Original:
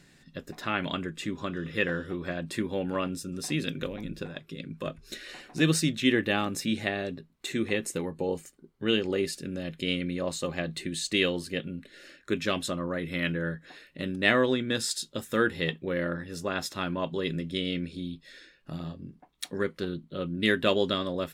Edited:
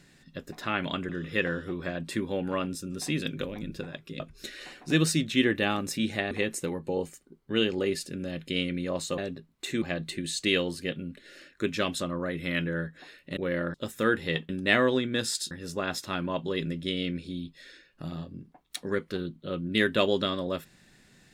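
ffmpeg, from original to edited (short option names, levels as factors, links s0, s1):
-filter_complex "[0:a]asplit=10[s0][s1][s2][s3][s4][s5][s6][s7][s8][s9];[s0]atrim=end=1.092[s10];[s1]atrim=start=1.508:end=4.622[s11];[s2]atrim=start=4.878:end=6.992[s12];[s3]atrim=start=7.628:end=10.502[s13];[s4]atrim=start=6.988:end=7.632[s14];[s5]atrim=start=10.498:end=14.052[s15];[s6]atrim=start=15.818:end=16.192[s16];[s7]atrim=start=15.068:end=15.822[s17];[s8]atrim=start=14.048:end=15.072[s18];[s9]atrim=start=16.188[s19];[s10][s11]acrossfade=d=0.004:c1=hsin:c2=hsin[s20];[s20][s12]acrossfade=d=0.004:c1=hsin:c2=hsin[s21];[s21][s13]acrossfade=d=0.004:c1=hsin:c2=hsin[s22];[s22][s14]acrossfade=d=0.004:c1=hsin:c2=hsin[s23];[s23][s15]acrossfade=d=0.004:c1=hsin:c2=hsin[s24];[s24][s16]acrossfade=d=0.004:c1=hsin:c2=hsin[s25];[s25][s17]acrossfade=d=0.004:c1=hsin:c2=hsin[s26];[s26][s18]acrossfade=d=0.004:c1=hsin:c2=hsin[s27];[s27][s19]acrossfade=d=0.004:c1=hsin:c2=hsin"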